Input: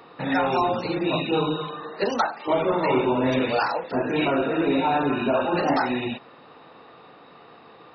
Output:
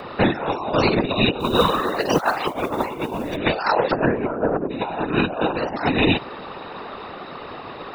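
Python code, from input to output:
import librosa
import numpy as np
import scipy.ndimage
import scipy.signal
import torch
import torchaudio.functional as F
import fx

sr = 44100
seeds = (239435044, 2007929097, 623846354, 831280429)

y = fx.lowpass(x, sr, hz=fx.line((4.05, 2000.0), (4.69, 1100.0)), slope=24, at=(4.05, 4.69), fade=0.02)
y = fx.over_compress(y, sr, threshold_db=-28.0, ratio=-0.5)
y = fx.whisperise(y, sr, seeds[0])
y = fx.mod_noise(y, sr, seeds[1], snr_db=25, at=(1.39, 3.35), fade=0.02)
y = F.gain(torch.from_numpy(y), 8.0).numpy()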